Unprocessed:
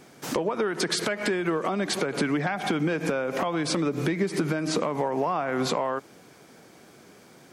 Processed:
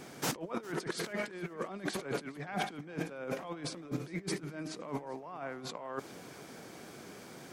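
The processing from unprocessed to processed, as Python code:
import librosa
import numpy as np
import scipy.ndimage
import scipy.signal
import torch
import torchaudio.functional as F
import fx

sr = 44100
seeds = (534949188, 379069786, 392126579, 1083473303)

p1 = fx.over_compress(x, sr, threshold_db=-33.0, ratio=-0.5)
p2 = p1 + fx.echo_feedback(p1, sr, ms=407, feedback_pct=38, wet_db=-21.5, dry=0)
y = p2 * 10.0 ** (-5.0 / 20.0)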